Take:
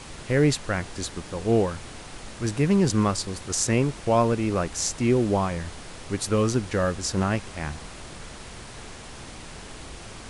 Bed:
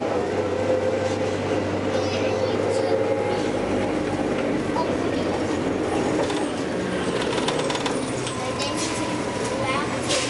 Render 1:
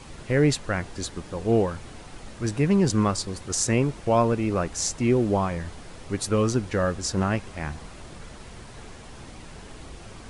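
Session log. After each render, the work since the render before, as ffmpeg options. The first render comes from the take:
-af "afftdn=nr=6:nf=-42"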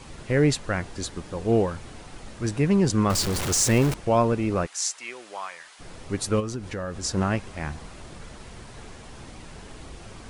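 -filter_complex "[0:a]asettb=1/sr,asplit=3[s0][s1][s2];[s0]atrim=end=3.104[s3];[s1]atrim=start=3.1:end=3.94,asetpts=PTS-STARTPTS,afade=t=in:d=0.004:c=qsin,afade=t=out:st=0.836:d=0.004:c=qsin,aeval=exprs='val(0)+0.5*0.0668*sgn(val(0))':c=same[s4];[s2]atrim=start=3.936[s5];[s3][s4]acrossfade=d=0.004:c1=hsin:c2=qsin[s6];[s6][s5]acrossfade=d=0.004:c1=qsin:c2=hsin,asplit=3[s7][s8][s9];[s7]afade=t=out:st=4.65:d=0.02[s10];[s8]highpass=1300,afade=t=in:st=4.65:d=0.02,afade=t=out:st=5.79:d=0.02[s11];[s9]afade=t=in:st=5.79:d=0.02[s12];[s10][s11][s12]amix=inputs=3:normalize=0,asplit=3[s13][s14][s15];[s13]afade=t=out:st=6.39:d=0.02[s16];[s14]acompressor=threshold=0.0316:ratio=3:attack=3.2:release=140:knee=1:detection=peak,afade=t=in:st=6.39:d=0.02,afade=t=out:st=7.02:d=0.02[s17];[s15]afade=t=in:st=7.02:d=0.02[s18];[s16][s17][s18]amix=inputs=3:normalize=0"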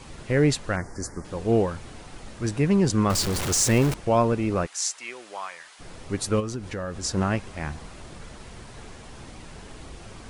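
-filter_complex "[0:a]asettb=1/sr,asplit=3[s0][s1][s2];[s0]atrim=end=0.764[s3];[s1]atrim=start=0.76:end=1.25,asetpts=PTS-STARTPTS,afade=t=in:d=0.004:c=qsin,afade=t=out:st=0.486:d=0.004:c=qsin,asuperstop=centerf=3200:order=8:qfactor=1.1[s4];[s2]atrim=start=1.246[s5];[s3][s4]acrossfade=d=0.004:c1=hsin:c2=qsin[s6];[s6][s5]acrossfade=d=0.004:c1=qsin:c2=hsin"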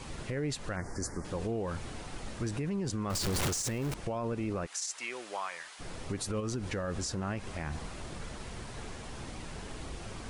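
-af "acompressor=threshold=0.0562:ratio=6,alimiter=level_in=1.26:limit=0.0631:level=0:latency=1:release=63,volume=0.794"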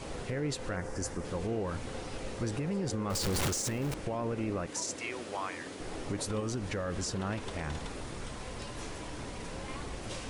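-filter_complex "[1:a]volume=0.0891[s0];[0:a][s0]amix=inputs=2:normalize=0"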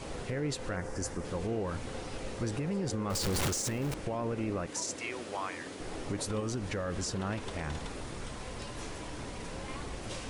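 -af anull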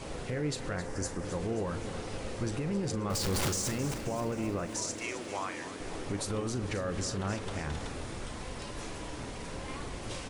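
-filter_complex "[0:a]asplit=2[s0][s1];[s1]adelay=40,volume=0.237[s2];[s0][s2]amix=inputs=2:normalize=0,asplit=2[s3][s4];[s4]aecho=0:1:265|530|795|1060|1325|1590|1855:0.251|0.148|0.0874|0.0516|0.0304|0.018|0.0106[s5];[s3][s5]amix=inputs=2:normalize=0"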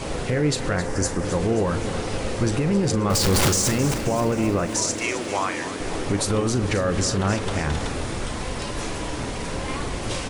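-af "volume=3.76"

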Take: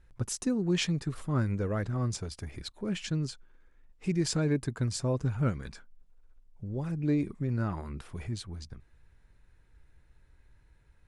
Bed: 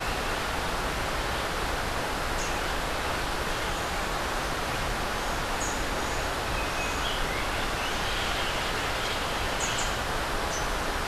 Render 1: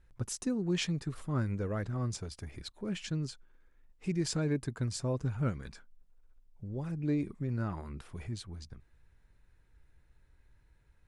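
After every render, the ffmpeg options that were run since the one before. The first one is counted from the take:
-af "volume=0.668"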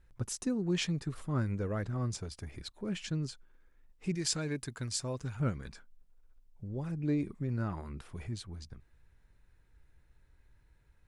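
-filter_complex "[0:a]asettb=1/sr,asplit=3[s0][s1][s2];[s0]atrim=end=4.154[s3];[s1]atrim=start=4.15:end=5.4,asetpts=PTS-STARTPTS,afade=t=in:d=0.004:c=qsin,afade=t=out:st=1.246:d=0.004:c=qsin,tiltshelf=f=1300:g=-5.5[s4];[s2]atrim=start=5.396[s5];[s3][s4]acrossfade=d=0.004:c1=hsin:c2=qsin[s6];[s6][s5]acrossfade=d=0.004:c1=qsin:c2=hsin"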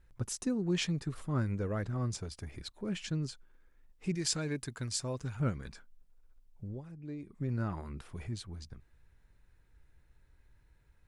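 -filter_complex "[0:a]asplit=3[s0][s1][s2];[s0]atrim=end=6.82,asetpts=PTS-STARTPTS,afade=t=out:st=6.7:d=0.12:silence=0.266073[s3];[s1]atrim=start=6.82:end=7.3,asetpts=PTS-STARTPTS,volume=0.266[s4];[s2]atrim=start=7.3,asetpts=PTS-STARTPTS,afade=t=in:d=0.12:silence=0.266073[s5];[s3][s4][s5]concat=n=3:v=0:a=1"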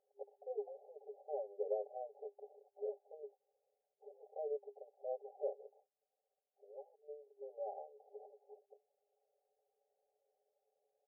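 -af "afftfilt=real='re*between(b*sr/4096,400,840)':imag='im*between(b*sr/4096,400,840)':win_size=4096:overlap=0.75,aecho=1:1:5.2:0.96"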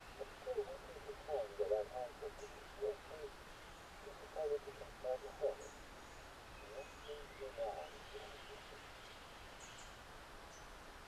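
-filter_complex "[1:a]volume=0.0473[s0];[0:a][s0]amix=inputs=2:normalize=0"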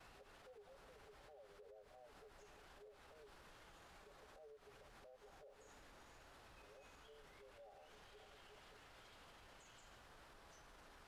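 -af "acompressor=threshold=0.00282:ratio=10,alimiter=level_in=33.5:limit=0.0631:level=0:latency=1:release=74,volume=0.0299"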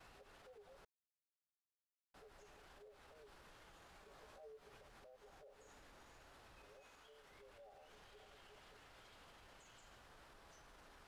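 -filter_complex "[0:a]asettb=1/sr,asplit=3[s0][s1][s2];[s0]atrim=end=4.064[s3];[s1]atrim=start=4.06:end=4.79,asetpts=PTS-STARTPTS,afade=t=in:d=0.004:c=qsin,afade=t=out:st=0.726:d=0.004:c=qsin,asplit=2[s4][s5];[s5]adelay=18,volume=0.708[s6];[s4][s6]amix=inputs=2:normalize=0,atrim=end_sample=32193[s7];[s2]atrim=start=4.786[s8];[s3][s7]acrossfade=d=0.004:c1=hsin:c2=qsin[s9];[s9][s8]acrossfade=d=0.004:c1=qsin:c2=hsin,asettb=1/sr,asplit=3[s10][s11][s12];[s10]atrim=end=6.804[s13];[s11]atrim=start=6.8:end=7.31,asetpts=PTS-STARTPTS,afade=t=in:d=0.004:c=qsin,afade=t=out:st=0.506:d=0.004:c=qsin,lowshelf=f=240:g=-8.5[s14];[s12]atrim=start=7.306[s15];[s13][s14]acrossfade=d=0.004:c1=hsin:c2=qsin[s16];[s16][s15]acrossfade=d=0.004:c1=qsin:c2=hsin,asplit=3[s17][s18][s19];[s17]atrim=end=0.85,asetpts=PTS-STARTPTS,afade=t=out:st=0.846:d=0.004:c=hsin[s20];[s18]atrim=start=0.85:end=2.14,asetpts=PTS-STARTPTS,volume=0[s21];[s19]atrim=start=2.14,asetpts=PTS-STARTPTS,afade=t=in:d=0.004:c=hsin[s22];[s20][s21][s22]concat=n=3:v=0:a=1"

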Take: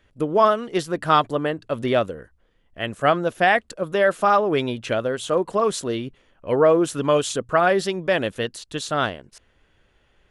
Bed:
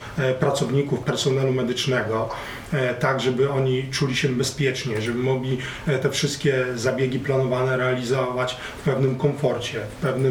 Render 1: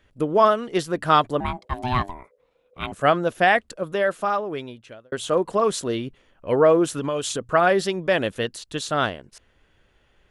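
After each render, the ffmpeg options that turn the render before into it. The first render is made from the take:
-filter_complex "[0:a]asettb=1/sr,asplit=3[s0][s1][s2];[s0]atrim=end=1.404[s3];[s1]atrim=start=1.4:end=2.92,asetpts=PTS-STARTPTS,afade=t=in:d=0.004:c=qsin,afade=t=out:st=1.516:d=0.004:c=qsin,aeval=exprs='val(0)*sin(2*PI*500*n/s)':c=same[s4];[s2]atrim=start=2.916[s5];[s3][s4]acrossfade=d=0.004:c1=hsin:c2=qsin[s6];[s6][s5]acrossfade=d=0.004:c1=qsin:c2=hsin,asettb=1/sr,asplit=3[s7][s8][s9];[s7]atrim=end=6.894[s10];[s8]atrim=start=6.89:end=7.49,asetpts=PTS-STARTPTS,afade=t=in:d=0.004:c=qsin,afade=t=out:st=0.596:d=0.004:c=qsin,acompressor=threshold=0.0794:ratio=4:attack=3.2:release=140:knee=1:detection=peak[s11];[s9]atrim=start=7.486[s12];[s10][s11]acrossfade=d=0.004:c1=hsin:c2=qsin[s13];[s13][s12]acrossfade=d=0.004:c1=qsin:c2=hsin,asplit=2[s14][s15];[s14]atrim=end=5.12,asetpts=PTS-STARTPTS,afade=t=out:st=3.5:d=1.62[s16];[s15]atrim=start=5.12,asetpts=PTS-STARTPTS,afade=t=in:d=0.004:c=hsin[s17];[s16][s17]concat=n=2:v=0:a=1"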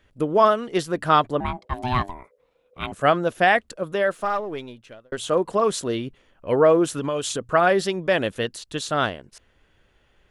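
-filter_complex "[0:a]asettb=1/sr,asplit=3[s0][s1][s2];[s0]atrim=end=1.084[s3];[s1]atrim=start=1.08:end=1.74,asetpts=PTS-STARTPTS,afade=t=in:d=0.004:c=qsin,afade=t=out:st=0.656:d=0.004:c=qsin,highshelf=f=5300:g=-6.5[s4];[s2]atrim=start=1.736[s5];[s3][s4]acrossfade=d=0.004:c1=hsin:c2=qsin[s6];[s6][s5]acrossfade=d=0.004:c1=qsin:c2=hsin,asettb=1/sr,asplit=3[s7][s8][s9];[s7]atrim=end=4.114[s10];[s8]atrim=start=4.11:end=5.18,asetpts=PTS-STARTPTS,afade=t=in:d=0.004:c=qsin,afade=t=out:st=1.066:d=0.004:c=qsin,aeval=exprs='if(lt(val(0),0),0.708*val(0),val(0))':c=same[s11];[s9]atrim=start=5.176[s12];[s10][s11]acrossfade=d=0.004:c1=hsin:c2=qsin[s13];[s13][s12]acrossfade=d=0.004:c1=qsin:c2=hsin"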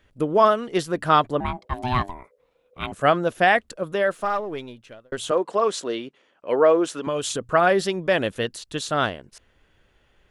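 -filter_complex "[0:a]asettb=1/sr,asplit=3[s0][s1][s2];[s0]atrim=end=5.314[s3];[s1]atrim=start=5.31:end=7.07,asetpts=PTS-STARTPTS,afade=t=in:d=0.004:c=qsin,afade=t=out:st=1.756:d=0.004:c=qsin,highpass=310,lowpass=7500[s4];[s2]atrim=start=7.066[s5];[s3][s4]acrossfade=d=0.004:c1=hsin:c2=qsin[s6];[s6][s5]acrossfade=d=0.004:c1=qsin:c2=hsin"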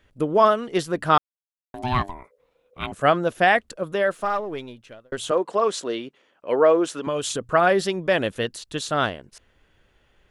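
-filter_complex "[0:a]asplit=3[s0][s1][s2];[s0]atrim=end=1.18,asetpts=PTS-STARTPTS,afade=t=out:st=1.176:d=0.004:c=hsin[s3];[s1]atrim=start=1.18:end=1.74,asetpts=PTS-STARTPTS,volume=0[s4];[s2]atrim=start=1.74,asetpts=PTS-STARTPTS,afade=t=in:d=0.004:c=hsin[s5];[s3][s4][s5]concat=n=3:v=0:a=1"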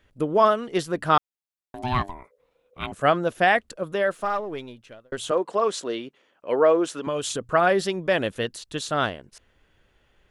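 -af "volume=0.841"

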